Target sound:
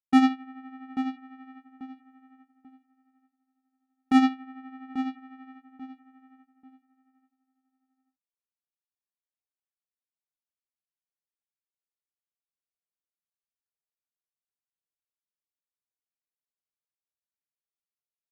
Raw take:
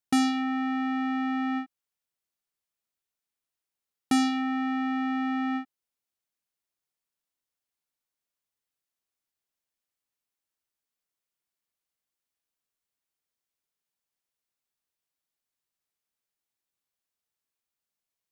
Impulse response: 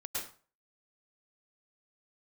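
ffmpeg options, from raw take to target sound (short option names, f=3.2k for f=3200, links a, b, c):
-filter_complex "[0:a]highshelf=f=3.7k:g=-9.5,agate=range=-20dB:threshold=-26dB:ratio=16:detection=peak,asplit=2[a][b];[b]adelay=839,lowpass=f=2.3k:p=1,volume=-9.5dB,asplit=2[c][d];[d]adelay=839,lowpass=f=2.3k:p=1,volume=0.25,asplit=2[e][f];[f]adelay=839,lowpass=f=2.3k:p=1,volume=0.25[g];[c][e][g]amix=inputs=3:normalize=0[h];[a][h]amix=inputs=2:normalize=0,tremolo=f=12:d=0.58,bass=f=250:g=0,treble=f=4k:g=-10,volume=7.5dB"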